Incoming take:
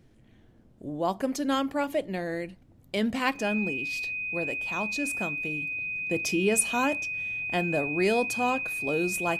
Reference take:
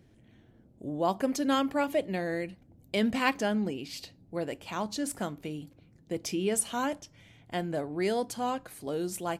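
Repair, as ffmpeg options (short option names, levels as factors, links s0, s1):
-af "bandreject=f=2500:w=30,agate=range=0.0891:threshold=0.00398,asetnsamples=n=441:p=0,asendcmd='5.72 volume volume -4dB',volume=1"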